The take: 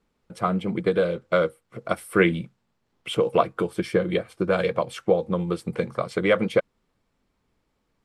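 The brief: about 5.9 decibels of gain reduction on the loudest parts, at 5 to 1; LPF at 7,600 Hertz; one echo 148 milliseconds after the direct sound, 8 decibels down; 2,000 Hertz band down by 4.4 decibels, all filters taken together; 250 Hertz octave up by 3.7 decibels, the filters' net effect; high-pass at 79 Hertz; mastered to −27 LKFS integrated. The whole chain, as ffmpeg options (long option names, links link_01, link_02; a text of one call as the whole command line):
ffmpeg -i in.wav -af "highpass=79,lowpass=7600,equalizer=frequency=250:width_type=o:gain=6,equalizer=frequency=2000:width_type=o:gain=-6,acompressor=threshold=-19dB:ratio=5,aecho=1:1:148:0.398,volume=-1dB" out.wav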